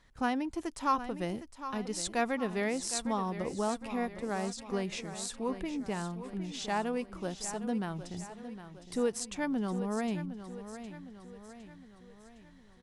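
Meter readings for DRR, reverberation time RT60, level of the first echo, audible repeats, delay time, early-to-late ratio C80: no reverb audible, no reverb audible, −11.5 dB, 5, 760 ms, no reverb audible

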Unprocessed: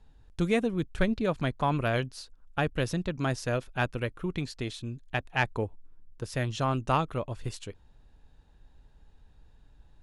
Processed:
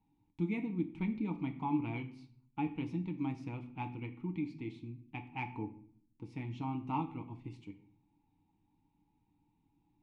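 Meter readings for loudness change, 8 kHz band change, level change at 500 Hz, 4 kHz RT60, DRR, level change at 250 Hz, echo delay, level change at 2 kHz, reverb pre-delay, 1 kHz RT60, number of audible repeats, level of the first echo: −8.5 dB, below −25 dB, −17.0 dB, 0.40 s, 4.5 dB, −4.0 dB, no echo audible, −15.0 dB, 6 ms, 0.50 s, no echo audible, no echo audible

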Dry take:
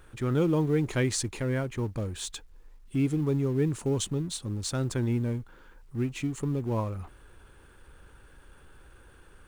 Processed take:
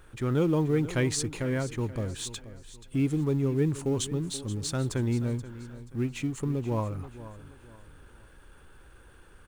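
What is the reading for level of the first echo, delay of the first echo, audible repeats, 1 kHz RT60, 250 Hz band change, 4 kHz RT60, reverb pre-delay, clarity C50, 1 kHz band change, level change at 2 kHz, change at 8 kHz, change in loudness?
−15.0 dB, 480 ms, 3, no reverb audible, +0.5 dB, no reverb audible, no reverb audible, no reverb audible, 0.0 dB, 0.0 dB, 0.0 dB, 0.0 dB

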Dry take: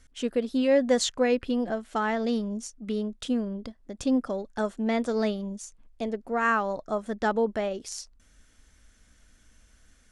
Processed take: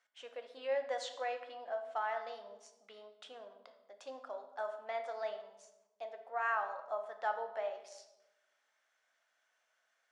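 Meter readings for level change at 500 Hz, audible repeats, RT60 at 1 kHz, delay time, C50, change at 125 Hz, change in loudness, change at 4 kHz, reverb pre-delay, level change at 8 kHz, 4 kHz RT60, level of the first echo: −12.5 dB, no echo audible, 0.90 s, no echo audible, 9.5 dB, can't be measured, −12.0 dB, −14.5 dB, 6 ms, −20.5 dB, 0.70 s, no echo audible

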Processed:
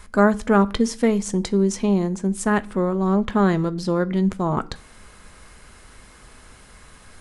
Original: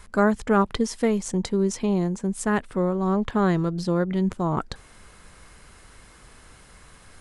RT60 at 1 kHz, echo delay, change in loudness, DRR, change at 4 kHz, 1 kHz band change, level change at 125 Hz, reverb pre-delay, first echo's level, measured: 0.45 s, no echo audible, +3.0 dB, 11.5 dB, +3.0 dB, +2.5 dB, +2.5 dB, 3 ms, no echo audible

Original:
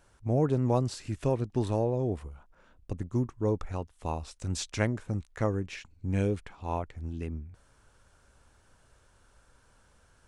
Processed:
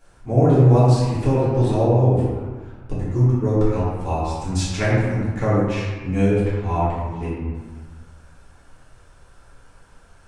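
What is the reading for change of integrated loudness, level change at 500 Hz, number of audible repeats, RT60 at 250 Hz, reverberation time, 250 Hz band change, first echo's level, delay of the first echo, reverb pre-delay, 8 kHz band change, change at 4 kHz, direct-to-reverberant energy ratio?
+12.0 dB, +11.0 dB, no echo audible, 1.6 s, 1.5 s, +11.0 dB, no echo audible, no echo audible, 3 ms, +6.5 dB, +8.0 dB, −10.0 dB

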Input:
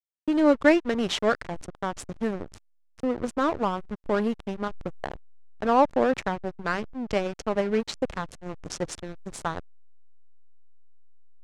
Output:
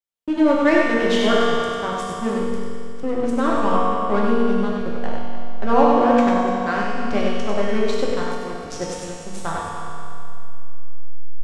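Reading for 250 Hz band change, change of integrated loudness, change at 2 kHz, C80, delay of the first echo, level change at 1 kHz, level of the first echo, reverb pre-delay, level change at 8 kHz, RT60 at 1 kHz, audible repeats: +7.0 dB, +6.0 dB, +6.0 dB, −2.0 dB, 97 ms, +7.5 dB, −4.0 dB, 4 ms, +4.0 dB, 2.5 s, 1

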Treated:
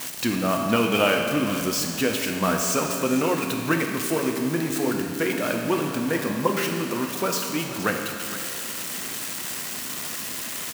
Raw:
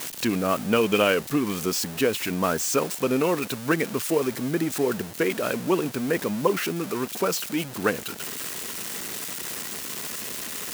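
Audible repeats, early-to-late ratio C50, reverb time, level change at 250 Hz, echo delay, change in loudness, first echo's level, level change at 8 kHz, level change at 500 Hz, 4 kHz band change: 1, 3.5 dB, 2.1 s, +1.5 dB, 466 ms, +1.0 dB, −14.5 dB, +2.0 dB, −1.0 dB, +2.0 dB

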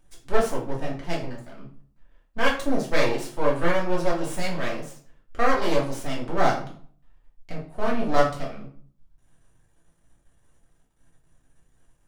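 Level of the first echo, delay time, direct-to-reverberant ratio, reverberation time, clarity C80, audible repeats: no echo audible, no echo audible, −5.0 dB, 0.50 s, 12.0 dB, no echo audible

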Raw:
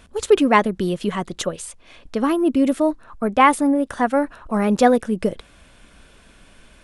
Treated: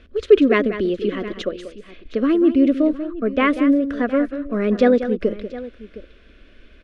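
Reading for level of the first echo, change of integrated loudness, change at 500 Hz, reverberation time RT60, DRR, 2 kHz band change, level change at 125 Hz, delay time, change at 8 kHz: −11.5 dB, +0.5 dB, +2.0 dB, no reverb audible, no reverb audible, −1.0 dB, can't be measured, 189 ms, below −15 dB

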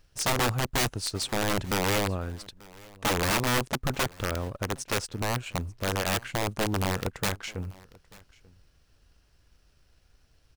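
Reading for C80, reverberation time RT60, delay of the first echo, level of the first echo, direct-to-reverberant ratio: no reverb audible, no reverb audible, 888 ms, −23.5 dB, no reverb audible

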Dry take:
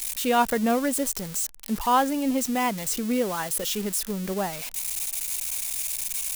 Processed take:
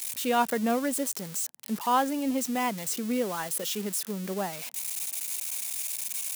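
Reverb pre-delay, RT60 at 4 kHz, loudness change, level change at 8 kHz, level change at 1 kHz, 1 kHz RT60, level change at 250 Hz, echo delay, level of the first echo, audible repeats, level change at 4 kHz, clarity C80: no reverb audible, no reverb audible, −3.5 dB, −3.5 dB, −3.5 dB, no reverb audible, −3.5 dB, no echo audible, no echo audible, no echo audible, −3.5 dB, no reverb audible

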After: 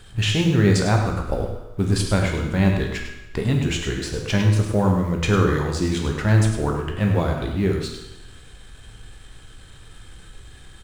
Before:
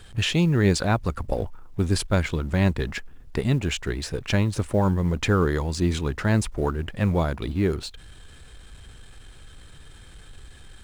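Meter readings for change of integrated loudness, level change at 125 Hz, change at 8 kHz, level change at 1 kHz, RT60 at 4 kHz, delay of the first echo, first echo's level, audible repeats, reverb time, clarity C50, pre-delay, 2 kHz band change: +3.0 dB, +4.0 dB, +2.5 dB, +2.5 dB, 0.95 s, 103 ms, −9.0 dB, 1, 1.0 s, 4.0 dB, 12 ms, +2.5 dB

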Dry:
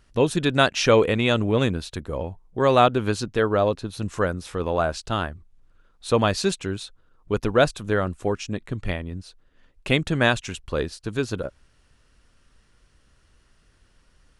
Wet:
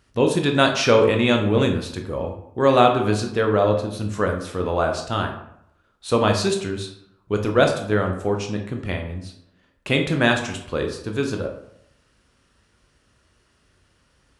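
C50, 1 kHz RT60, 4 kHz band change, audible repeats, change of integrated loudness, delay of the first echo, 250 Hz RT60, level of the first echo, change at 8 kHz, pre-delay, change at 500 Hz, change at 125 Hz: 7.5 dB, 0.75 s, +1.5 dB, no echo audible, +2.0 dB, no echo audible, 0.75 s, no echo audible, +1.0 dB, 14 ms, +2.5 dB, +1.5 dB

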